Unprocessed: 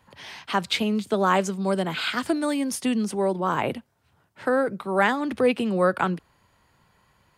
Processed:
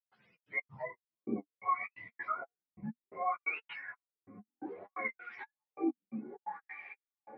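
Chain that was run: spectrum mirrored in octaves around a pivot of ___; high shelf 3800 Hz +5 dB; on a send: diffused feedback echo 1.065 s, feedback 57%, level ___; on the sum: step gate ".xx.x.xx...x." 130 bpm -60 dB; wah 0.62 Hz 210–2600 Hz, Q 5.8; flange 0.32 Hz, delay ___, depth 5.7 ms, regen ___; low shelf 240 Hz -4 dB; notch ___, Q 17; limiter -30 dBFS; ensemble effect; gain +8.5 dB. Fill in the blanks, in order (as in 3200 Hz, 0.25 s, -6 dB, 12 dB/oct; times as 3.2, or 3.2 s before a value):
650 Hz, -13.5 dB, 4.9 ms, +26%, 1600 Hz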